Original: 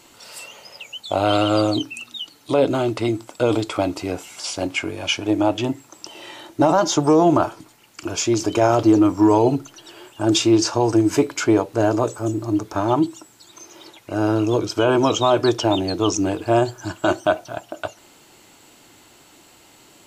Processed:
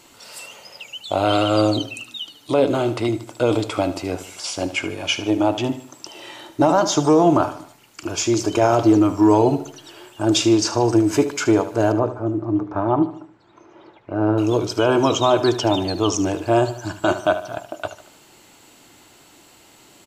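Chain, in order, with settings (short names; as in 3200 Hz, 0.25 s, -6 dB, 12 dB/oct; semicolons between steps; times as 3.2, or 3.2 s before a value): 11.92–14.38 LPF 1500 Hz 12 dB/oct; feedback echo 75 ms, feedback 44%, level -13 dB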